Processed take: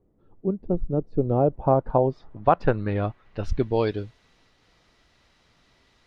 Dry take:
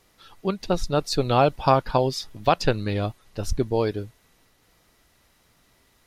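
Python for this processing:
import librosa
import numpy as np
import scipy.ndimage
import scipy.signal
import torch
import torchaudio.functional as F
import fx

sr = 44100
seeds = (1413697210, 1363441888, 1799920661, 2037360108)

y = fx.filter_sweep_lowpass(x, sr, from_hz=370.0, to_hz=4500.0, start_s=1.12, end_s=4.16, q=1.1)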